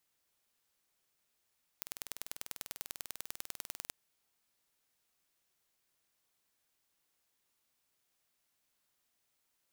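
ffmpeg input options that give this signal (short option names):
-f lavfi -i "aevalsrc='0.266*eq(mod(n,2183),0)*(0.5+0.5*eq(mod(n,4366),0))':d=2.12:s=44100"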